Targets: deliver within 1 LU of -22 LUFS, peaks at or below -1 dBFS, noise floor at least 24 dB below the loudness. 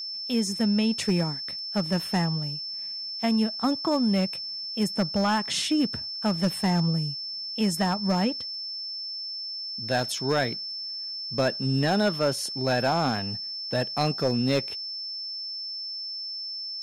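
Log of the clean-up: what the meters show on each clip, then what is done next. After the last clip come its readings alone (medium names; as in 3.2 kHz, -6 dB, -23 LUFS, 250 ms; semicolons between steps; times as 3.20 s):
clipped samples 0.6%; clipping level -16.5 dBFS; steady tone 5.3 kHz; tone level -32 dBFS; loudness -27.0 LUFS; peak level -16.5 dBFS; loudness target -22.0 LUFS
-> clip repair -16.5 dBFS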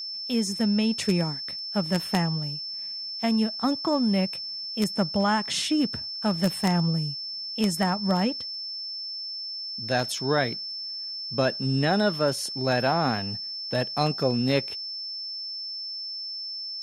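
clipped samples 0.0%; steady tone 5.3 kHz; tone level -32 dBFS
-> band-stop 5.3 kHz, Q 30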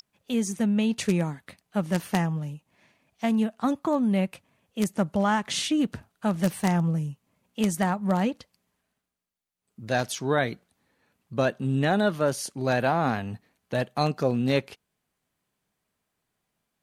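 steady tone not found; loudness -26.5 LUFS; peak level -7.5 dBFS; loudness target -22.0 LUFS
-> trim +4.5 dB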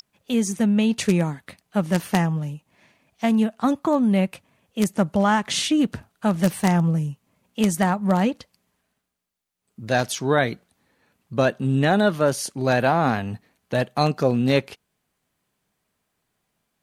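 loudness -22.0 LUFS; peak level -3.0 dBFS; noise floor -76 dBFS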